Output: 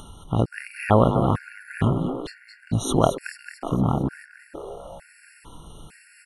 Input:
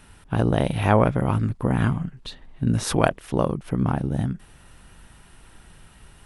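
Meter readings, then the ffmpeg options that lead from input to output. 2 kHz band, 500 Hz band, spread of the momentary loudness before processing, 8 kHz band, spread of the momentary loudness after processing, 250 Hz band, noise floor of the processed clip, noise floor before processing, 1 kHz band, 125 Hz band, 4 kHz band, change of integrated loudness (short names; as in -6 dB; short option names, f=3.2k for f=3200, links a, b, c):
-2.5 dB, +0.5 dB, 10 LU, -0.5 dB, 20 LU, -1.0 dB, -54 dBFS, -51 dBFS, +0.5 dB, -1.5 dB, -1.5 dB, 0.0 dB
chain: -filter_complex "[0:a]asplit=7[a][b][c][d][e][f][g];[b]adelay=222,afreqshift=140,volume=-9.5dB[h];[c]adelay=444,afreqshift=280,volume=-14.9dB[i];[d]adelay=666,afreqshift=420,volume=-20.2dB[j];[e]adelay=888,afreqshift=560,volume=-25.6dB[k];[f]adelay=1110,afreqshift=700,volume=-30.9dB[l];[g]adelay=1332,afreqshift=840,volume=-36.3dB[m];[a][h][i][j][k][l][m]amix=inputs=7:normalize=0,acompressor=mode=upward:threshold=-35dB:ratio=2.5,afftfilt=real='re*gt(sin(2*PI*1.1*pts/sr)*(1-2*mod(floor(b*sr/1024/1400),2)),0)':imag='im*gt(sin(2*PI*1.1*pts/sr)*(1-2*mod(floor(b*sr/1024/1400),2)),0)':win_size=1024:overlap=0.75,volume=1dB"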